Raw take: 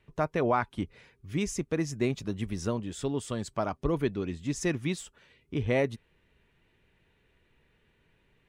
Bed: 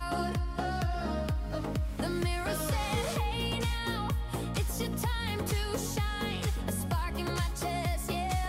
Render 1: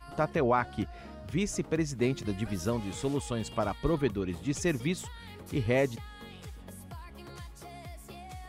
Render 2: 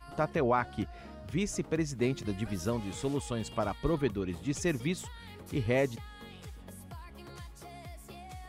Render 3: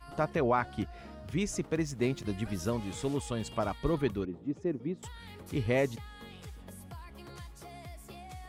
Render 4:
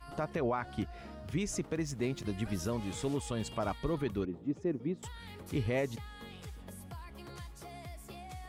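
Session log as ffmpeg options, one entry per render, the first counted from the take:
-filter_complex "[1:a]volume=0.211[s0];[0:a][s0]amix=inputs=2:normalize=0"
-af "volume=0.841"
-filter_complex "[0:a]asettb=1/sr,asplit=3[s0][s1][s2];[s0]atrim=end=1.674[s3];[s1]atrim=start=1.67:end=2.27,asetpts=PTS-STARTPTS,afade=t=in:d=0.004:c=qsin,afade=t=out:st=0.596:d=0.004:c=qsin,aeval=exprs='sgn(val(0))*max(abs(val(0))-0.00158,0)':c=same[s4];[s2]atrim=start=2.266[s5];[s3][s4]acrossfade=d=0.004:c1=hsin:c2=qsin[s6];[s6][s5]acrossfade=d=0.004:c1=qsin:c2=hsin,asettb=1/sr,asplit=3[s7][s8][s9];[s7]atrim=end=4.254[s10];[s8]atrim=start=4.25:end=5.03,asetpts=PTS-STARTPTS,afade=t=in:d=0.004:c=qsin,afade=t=out:st=0.776:d=0.004:c=qsin,bandpass=f=320:t=q:w=1.1[s11];[s9]atrim=start=5.026[s12];[s10][s11]acrossfade=d=0.004:c1=hsin:c2=qsin[s13];[s13][s12]acrossfade=d=0.004:c1=qsin:c2=hsin"
-af "alimiter=limit=0.0668:level=0:latency=1:release=96"

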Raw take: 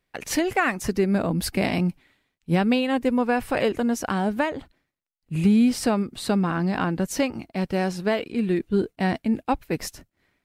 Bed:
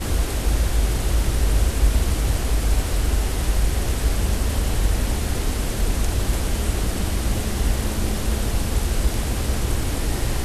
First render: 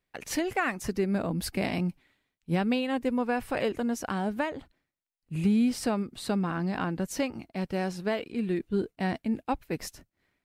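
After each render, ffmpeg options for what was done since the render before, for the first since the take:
-af "volume=0.501"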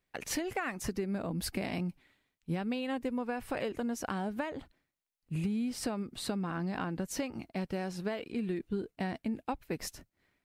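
-af "acompressor=threshold=0.0282:ratio=6"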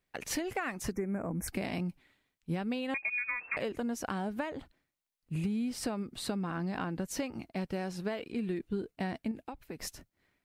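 -filter_complex "[0:a]asettb=1/sr,asplit=3[s0][s1][s2];[s0]atrim=end=0.924[s3];[s1]atrim=start=0.92:end=1.48,asetpts=PTS-STARTPTS,afade=t=in:d=0.004:c=qsin,afade=t=out:st=0.556:d=0.004:c=qsin,asuperstop=centerf=3700:order=20:qfactor=1.2[s4];[s2]atrim=start=1.476[s5];[s3][s4]acrossfade=d=0.004:c1=hsin:c2=qsin[s6];[s6][s5]acrossfade=d=0.004:c1=qsin:c2=hsin,asettb=1/sr,asplit=3[s7][s8][s9];[s7]atrim=end=2.944[s10];[s8]atrim=start=2.94:end=3.57,asetpts=PTS-STARTPTS,afade=t=in:d=0.004:c=qsin,afade=t=out:st=0.626:d=0.004:c=qsin,lowpass=f=2300:t=q:w=0.5098,lowpass=f=2300:t=q:w=0.6013,lowpass=f=2300:t=q:w=0.9,lowpass=f=2300:t=q:w=2.563,afreqshift=-2700[s11];[s9]atrim=start=3.566[s12];[s10][s11]acrossfade=d=0.004:c1=hsin:c2=qsin[s13];[s13][s12]acrossfade=d=0.004:c1=qsin:c2=hsin,asettb=1/sr,asplit=3[s14][s15][s16];[s14]atrim=end=9.314[s17];[s15]atrim=start=9.31:end=9.78,asetpts=PTS-STARTPTS,afade=t=in:d=0.004:c=qsin,afade=t=out:st=0.466:d=0.004:c=qsin,acompressor=threshold=0.0141:ratio=5:attack=3.2:release=140:knee=1:detection=peak[s18];[s16]atrim=start=9.776[s19];[s17][s18]acrossfade=d=0.004:c1=hsin:c2=qsin[s20];[s20][s19]acrossfade=d=0.004:c1=qsin:c2=hsin"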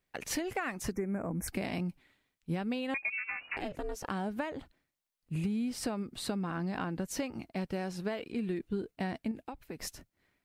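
-filter_complex "[0:a]asplit=3[s0][s1][s2];[s0]afade=t=out:st=3.11:d=0.02[s3];[s1]aeval=exprs='val(0)*sin(2*PI*210*n/s)':c=same,afade=t=in:st=3.11:d=0.02,afade=t=out:st=4.08:d=0.02[s4];[s2]afade=t=in:st=4.08:d=0.02[s5];[s3][s4][s5]amix=inputs=3:normalize=0"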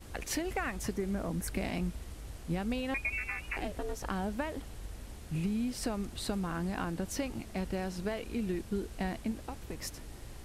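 -filter_complex "[1:a]volume=0.0631[s0];[0:a][s0]amix=inputs=2:normalize=0"

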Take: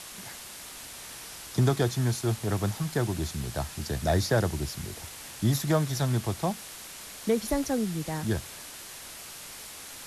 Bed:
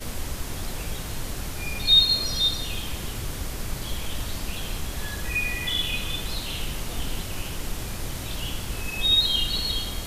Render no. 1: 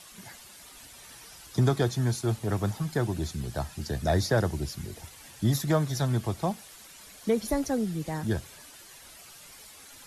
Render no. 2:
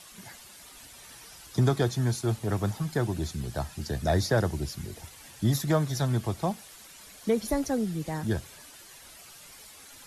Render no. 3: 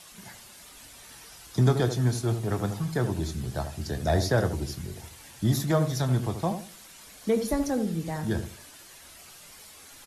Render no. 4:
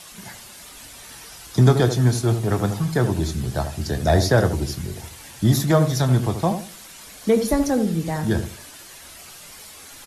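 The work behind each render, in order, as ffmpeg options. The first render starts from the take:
-af "afftdn=nr=10:nf=-44"
-af anull
-filter_complex "[0:a]asplit=2[s0][s1];[s1]adelay=24,volume=0.266[s2];[s0][s2]amix=inputs=2:normalize=0,asplit=2[s3][s4];[s4]adelay=78,lowpass=f=960:p=1,volume=0.422,asplit=2[s5][s6];[s6]adelay=78,lowpass=f=960:p=1,volume=0.31,asplit=2[s7][s8];[s8]adelay=78,lowpass=f=960:p=1,volume=0.31,asplit=2[s9][s10];[s10]adelay=78,lowpass=f=960:p=1,volume=0.31[s11];[s5][s7][s9][s11]amix=inputs=4:normalize=0[s12];[s3][s12]amix=inputs=2:normalize=0"
-af "volume=2.24"

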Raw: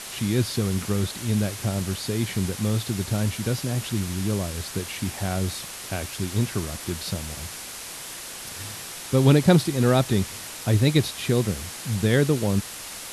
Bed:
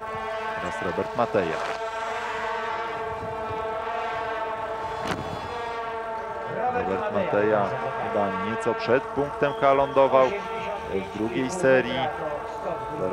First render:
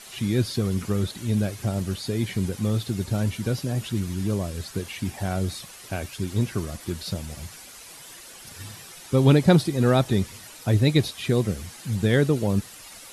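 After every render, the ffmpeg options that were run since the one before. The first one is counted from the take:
-af "afftdn=nr=10:nf=-37"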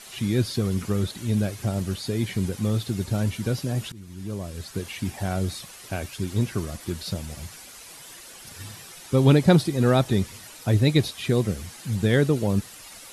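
-filter_complex "[0:a]asplit=2[s0][s1];[s0]atrim=end=3.92,asetpts=PTS-STARTPTS,afade=t=out:st=3.916:d=0.004:c=hsin:silence=0.0891251[s2];[s1]atrim=start=3.92,asetpts=PTS-STARTPTS,afade=t=in:d=0.97:silence=0.0891251[s3];[s2][s3]concat=n=2:v=0:a=1"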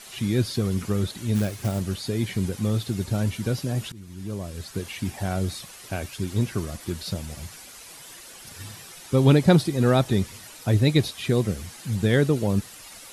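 -filter_complex "[0:a]asplit=3[s0][s1][s2];[s0]afade=t=out:st=1.34:d=0.02[s3];[s1]acrusher=bits=4:mode=log:mix=0:aa=0.000001,afade=t=in:st=1.34:d=0.02,afade=t=out:st=1.78:d=0.02[s4];[s2]afade=t=in:st=1.78:d=0.02[s5];[s3][s4][s5]amix=inputs=3:normalize=0"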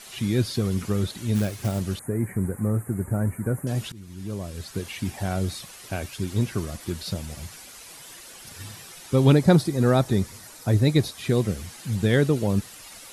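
-filter_complex "[0:a]asettb=1/sr,asplit=3[s0][s1][s2];[s0]atrim=end=1.994[s3];[s1]atrim=start=1.99:end=3.67,asetpts=PTS-STARTPTS,afade=t=in:d=0.004:c=qsin,afade=t=out:st=1.676:d=0.004:c=qsin,asuperstop=centerf=4100:order=8:qfactor=0.65[s4];[s2]atrim=start=3.666[s5];[s3][s4]acrossfade=d=0.004:c1=hsin:c2=qsin[s6];[s6][s5]acrossfade=d=0.004:c1=qsin:c2=hsin,asettb=1/sr,asplit=3[s7][s8][s9];[s7]atrim=end=9.324[s10];[s8]atrim=start=9.32:end=11.26,asetpts=PTS-STARTPTS,afade=t=in:d=0.004:c=qsin,afade=t=out:st=1.936:d=0.004:c=qsin,equalizer=f=2900:w=1.9:g=-6.5[s11];[s9]atrim=start=11.256[s12];[s10][s11]acrossfade=d=0.004:c1=hsin:c2=qsin[s13];[s13][s12]acrossfade=d=0.004:c1=qsin:c2=hsin"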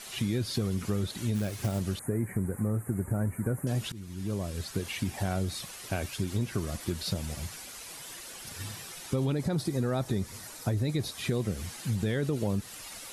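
-af "alimiter=limit=0.178:level=0:latency=1:release=16,acompressor=threshold=0.0501:ratio=5"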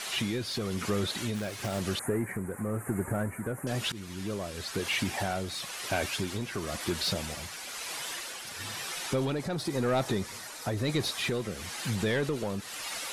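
-filter_complex "[0:a]asplit=2[s0][s1];[s1]highpass=f=720:p=1,volume=7.08,asoftclip=type=tanh:threshold=0.141[s2];[s0][s2]amix=inputs=2:normalize=0,lowpass=f=4100:p=1,volume=0.501,tremolo=f=1:d=0.44"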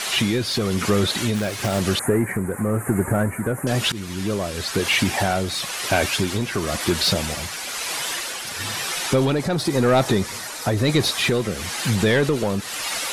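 -af "volume=3.35"

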